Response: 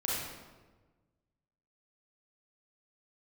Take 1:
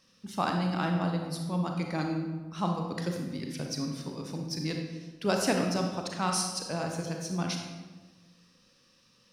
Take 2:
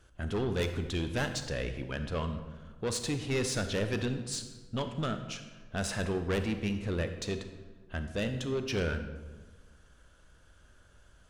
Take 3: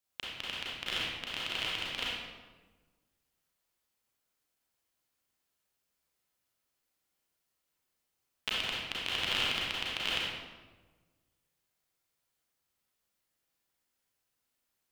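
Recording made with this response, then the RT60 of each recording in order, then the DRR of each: 3; 1.3, 1.3, 1.3 s; 2.0, 7.5, -6.5 dB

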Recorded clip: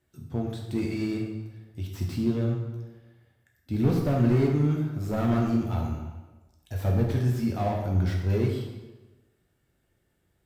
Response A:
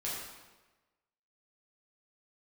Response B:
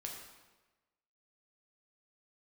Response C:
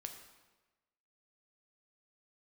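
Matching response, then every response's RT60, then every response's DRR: B; 1.2, 1.2, 1.2 s; -7.5, -0.5, 4.5 dB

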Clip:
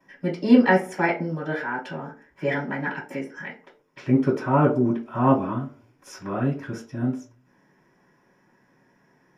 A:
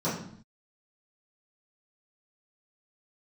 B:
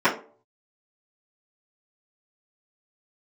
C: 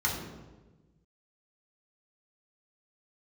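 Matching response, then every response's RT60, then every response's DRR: B; 0.60, 0.45, 1.2 s; -12.5, -13.5, -3.5 dB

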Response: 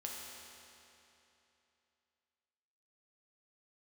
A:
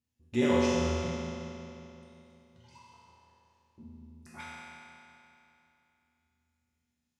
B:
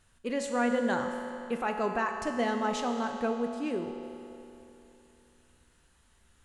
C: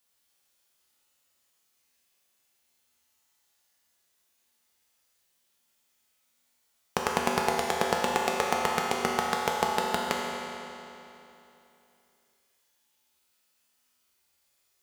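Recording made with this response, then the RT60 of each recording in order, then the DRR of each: C; 3.0, 3.0, 3.0 s; -8.5, 3.5, -2.5 dB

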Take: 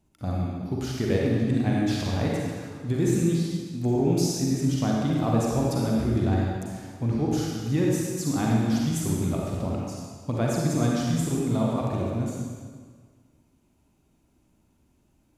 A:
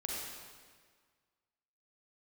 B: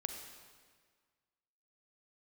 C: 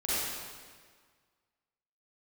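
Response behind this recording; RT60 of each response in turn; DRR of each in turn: A; 1.7, 1.7, 1.7 s; -3.5, 5.0, -11.0 dB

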